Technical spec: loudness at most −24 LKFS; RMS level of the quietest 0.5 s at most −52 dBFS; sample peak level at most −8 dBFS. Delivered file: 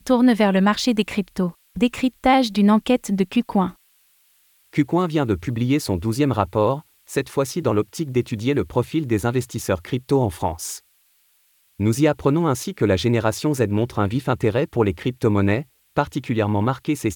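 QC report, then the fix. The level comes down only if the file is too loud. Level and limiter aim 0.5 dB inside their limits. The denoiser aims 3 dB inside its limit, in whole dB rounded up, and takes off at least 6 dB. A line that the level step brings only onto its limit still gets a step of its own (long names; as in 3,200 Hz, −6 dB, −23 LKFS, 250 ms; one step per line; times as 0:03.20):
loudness −21.0 LKFS: out of spec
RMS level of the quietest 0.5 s −61 dBFS: in spec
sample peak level −4.5 dBFS: out of spec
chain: level −3.5 dB
brickwall limiter −8.5 dBFS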